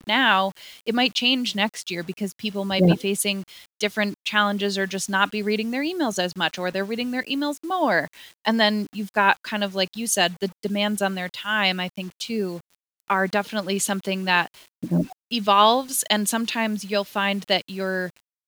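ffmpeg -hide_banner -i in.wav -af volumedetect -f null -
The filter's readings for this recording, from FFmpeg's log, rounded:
mean_volume: -23.9 dB
max_volume: -1.9 dB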